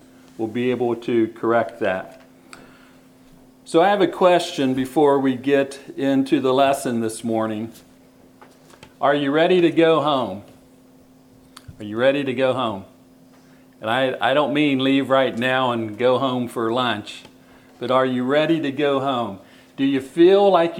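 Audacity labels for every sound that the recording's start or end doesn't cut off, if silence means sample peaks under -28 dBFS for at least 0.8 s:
3.690000	7.660000	sound
8.830000	10.380000	sound
11.570000	12.800000	sound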